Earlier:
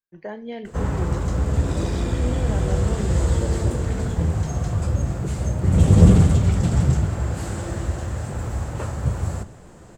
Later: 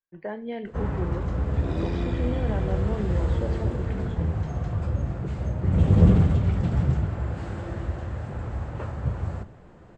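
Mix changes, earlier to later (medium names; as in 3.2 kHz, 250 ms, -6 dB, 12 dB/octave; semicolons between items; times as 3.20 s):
first sound -4.5 dB; master: add low-pass 3 kHz 12 dB/octave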